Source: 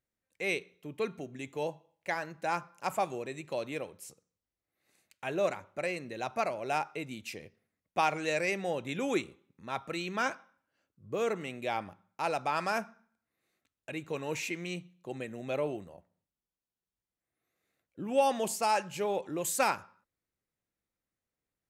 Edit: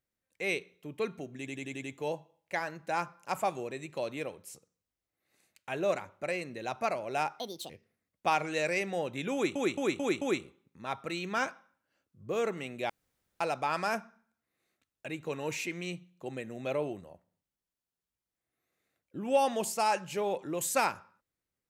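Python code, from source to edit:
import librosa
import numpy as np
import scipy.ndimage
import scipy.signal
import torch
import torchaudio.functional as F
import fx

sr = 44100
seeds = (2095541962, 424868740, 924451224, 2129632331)

y = fx.edit(x, sr, fx.stutter(start_s=1.38, slice_s=0.09, count=6),
    fx.speed_span(start_s=6.94, length_s=0.47, speed=1.54),
    fx.stutter(start_s=9.05, slice_s=0.22, count=5),
    fx.room_tone_fill(start_s=11.73, length_s=0.51), tone=tone)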